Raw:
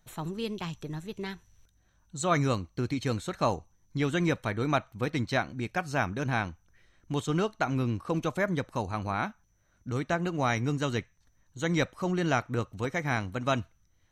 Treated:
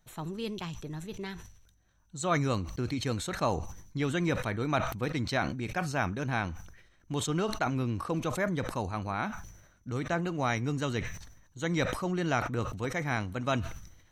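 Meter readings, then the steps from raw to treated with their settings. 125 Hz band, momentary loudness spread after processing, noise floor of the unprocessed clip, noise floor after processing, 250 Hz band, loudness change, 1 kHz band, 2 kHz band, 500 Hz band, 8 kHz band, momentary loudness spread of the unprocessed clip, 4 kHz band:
−1.5 dB, 11 LU, −68 dBFS, −64 dBFS, −1.5 dB, −1.5 dB, −1.5 dB, −1.5 dB, −2.0 dB, +1.0 dB, 9 LU, −0.5 dB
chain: level that may fall only so fast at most 64 dB per second
level −2.5 dB

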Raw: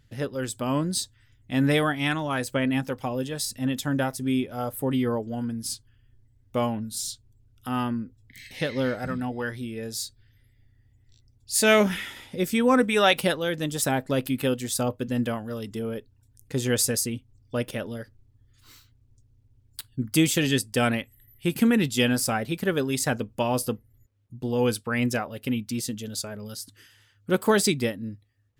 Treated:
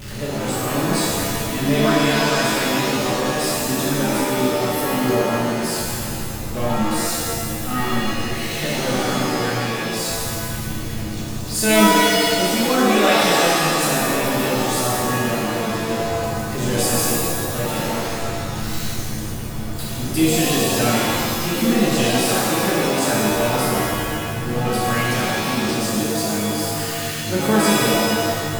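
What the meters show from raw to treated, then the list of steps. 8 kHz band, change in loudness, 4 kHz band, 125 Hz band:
+8.5 dB, +6.5 dB, +9.5 dB, +6.5 dB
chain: converter with a step at zero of −25.5 dBFS
reverb with rising layers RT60 1.8 s, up +7 semitones, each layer −2 dB, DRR −7 dB
level −6.5 dB

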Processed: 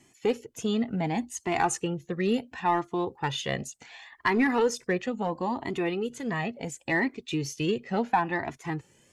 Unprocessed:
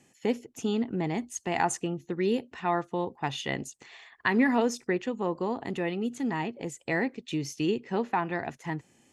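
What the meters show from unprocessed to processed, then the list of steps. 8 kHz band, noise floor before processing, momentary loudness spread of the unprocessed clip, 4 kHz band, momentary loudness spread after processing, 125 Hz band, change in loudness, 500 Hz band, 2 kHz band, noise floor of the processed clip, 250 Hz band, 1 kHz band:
+2.0 dB, −64 dBFS, 8 LU, +2.5 dB, 8 LU, +1.5 dB, +1.0 dB, +1.0 dB, +2.0 dB, −63 dBFS, 0.0 dB, +2.5 dB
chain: in parallel at −5 dB: gain into a clipping stage and back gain 20 dB
on the sum: flanger whose copies keep moving one way rising 0.71 Hz
level +3 dB

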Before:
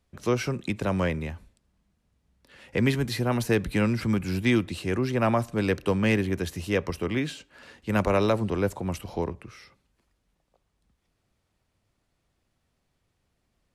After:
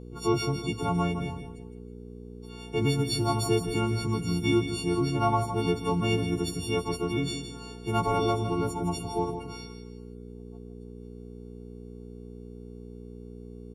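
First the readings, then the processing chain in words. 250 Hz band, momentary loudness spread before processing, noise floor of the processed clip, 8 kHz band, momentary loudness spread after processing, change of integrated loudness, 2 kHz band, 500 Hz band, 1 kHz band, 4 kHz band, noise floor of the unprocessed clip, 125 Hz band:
−2.0 dB, 9 LU, −44 dBFS, +2.5 dB, 19 LU, −1.5 dB, −6.0 dB, −2.0 dB, +3.0 dB, +2.5 dB, −76 dBFS, −0.5 dB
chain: every partial snapped to a pitch grid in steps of 4 semitones
low-pass filter 1,900 Hz 6 dB per octave
in parallel at +1.5 dB: downward compressor, threshold −35 dBFS, peak gain reduction 16.5 dB
on the sum: phaser with its sweep stopped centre 360 Hz, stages 8
hum with harmonics 60 Hz, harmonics 8, −43 dBFS −3 dB per octave
on a send: repeating echo 162 ms, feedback 34%, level −9 dB

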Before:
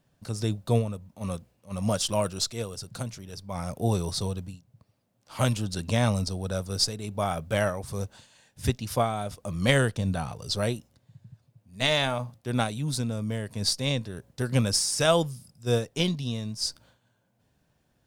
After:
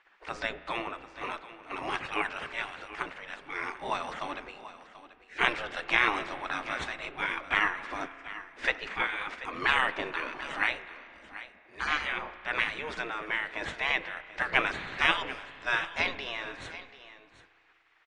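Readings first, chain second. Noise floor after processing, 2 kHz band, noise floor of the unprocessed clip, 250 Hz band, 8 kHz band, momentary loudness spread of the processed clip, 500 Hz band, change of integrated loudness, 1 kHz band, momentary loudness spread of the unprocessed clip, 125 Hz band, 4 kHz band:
−61 dBFS, +7.5 dB, −71 dBFS, −13.0 dB, −20.0 dB, 16 LU, −10.0 dB, −3.0 dB, +1.5 dB, 13 LU, −23.5 dB, −5.5 dB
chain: gate on every frequency bin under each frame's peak −20 dB weak
in parallel at −0.5 dB: downward compressor, threshold −54 dBFS, peak gain reduction 24 dB
on the sum: low-pass with resonance 2,000 Hz, resonance Q 2.2
on a send: single-tap delay 736 ms −15 dB
on the sum: spring reverb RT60 2.5 s, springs 33 ms, chirp 70 ms, DRR 14 dB
level +8.5 dB
MP3 56 kbit/s 22,050 Hz

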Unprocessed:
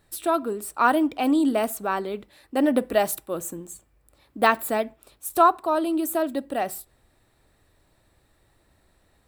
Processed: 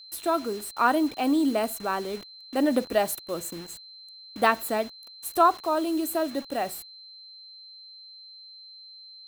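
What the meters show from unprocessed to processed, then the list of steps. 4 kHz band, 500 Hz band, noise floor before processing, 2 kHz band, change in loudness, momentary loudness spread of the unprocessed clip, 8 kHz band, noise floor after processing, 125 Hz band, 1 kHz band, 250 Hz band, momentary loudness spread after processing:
+3.0 dB, −2.5 dB, −65 dBFS, −2.5 dB, −2.5 dB, 15 LU, −2.0 dB, −48 dBFS, −2.5 dB, −2.5 dB, −2.5 dB, 21 LU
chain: bit reduction 7 bits
steady tone 4,100 Hz −42 dBFS
level −2.5 dB

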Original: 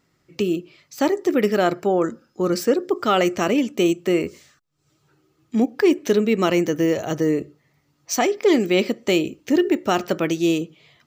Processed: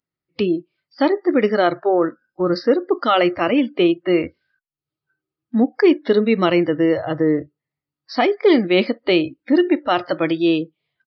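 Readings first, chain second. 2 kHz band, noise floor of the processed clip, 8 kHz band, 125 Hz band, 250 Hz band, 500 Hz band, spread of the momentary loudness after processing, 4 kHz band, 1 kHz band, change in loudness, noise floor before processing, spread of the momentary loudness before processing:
+3.0 dB, below −85 dBFS, below −25 dB, 0.0 dB, +2.5 dB, +2.5 dB, 7 LU, +2.5 dB, +3.0 dB, +2.5 dB, −67 dBFS, 7 LU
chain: downsampling to 11,025 Hz
noise reduction from a noise print of the clip's start 26 dB
level +3 dB

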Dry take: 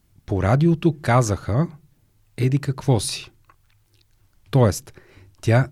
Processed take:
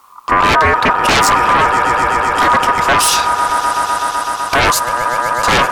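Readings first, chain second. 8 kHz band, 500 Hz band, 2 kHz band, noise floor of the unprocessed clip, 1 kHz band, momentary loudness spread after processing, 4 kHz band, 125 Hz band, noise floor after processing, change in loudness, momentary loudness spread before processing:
+14.5 dB, +5.5 dB, +19.5 dB, −63 dBFS, +19.5 dB, 5 LU, +17.0 dB, −8.0 dB, −24 dBFS, +9.0 dB, 10 LU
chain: echo that builds up and dies away 126 ms, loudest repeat 5, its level −18 dB
sine wavefolder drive 15 dB, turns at −4.5 dBFS
ring modulation 1,100 Hz

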